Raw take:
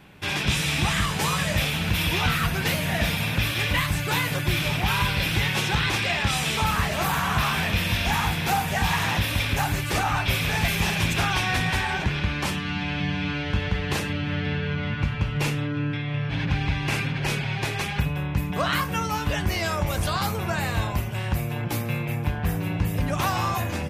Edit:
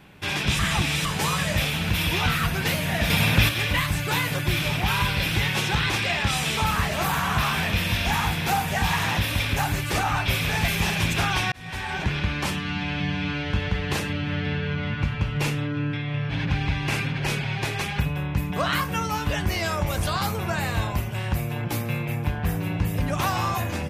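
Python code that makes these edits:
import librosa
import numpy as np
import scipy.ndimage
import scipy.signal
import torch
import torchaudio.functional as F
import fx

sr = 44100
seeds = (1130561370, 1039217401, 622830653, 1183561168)

y = fx.edit(x, sr, fx.reverse_span(start_s=0.59, length_s=0.46),
    fx.clip_gain(start_s=3.1, length_s=0.39, db=5.5),
    fx.fade_in_span(start_s=11.52, length_s=0.57), tone=tone)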